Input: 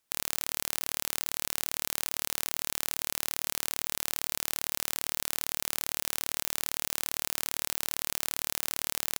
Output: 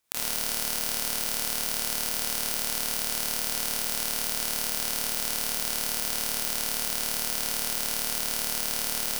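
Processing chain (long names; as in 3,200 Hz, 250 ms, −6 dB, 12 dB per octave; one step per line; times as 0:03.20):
four-comb reverb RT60 0.54 s, combs from 31 ms, DRR −3 dB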